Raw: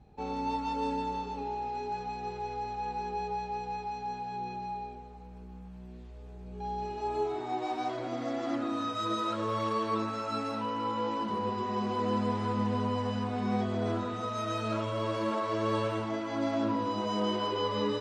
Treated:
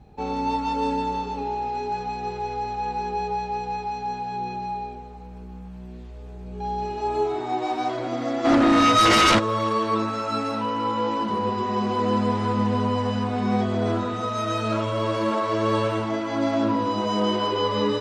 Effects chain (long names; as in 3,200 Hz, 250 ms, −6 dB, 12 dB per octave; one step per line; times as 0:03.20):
0:08.44–0:09.38: sine wavefolder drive 6 dB → 12 dB, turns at −20.5 dBFS
level +7.5 dB